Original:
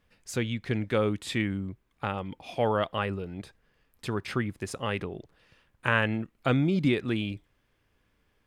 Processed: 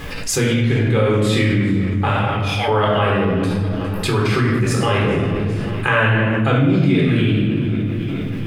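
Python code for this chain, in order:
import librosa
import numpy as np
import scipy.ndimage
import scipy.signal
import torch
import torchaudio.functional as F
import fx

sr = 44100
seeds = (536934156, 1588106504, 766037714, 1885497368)

y = fx.highpass(x, sr, hz=1400.0, slope=12, at=(2.1, 2.68))
y = fx.echo_feedback(y, sr, ms=407, feedback_pct=53, wet_db=-22)
y = fx.room_shoebox(y, sr, seeds[0], volume_m3=810.0, walls='mixed', distance_m=3.9)
y = fx.env_flatten(y, sr, amount_pct=70)
y = y * 10.0 ** (-3.0 / 20.0)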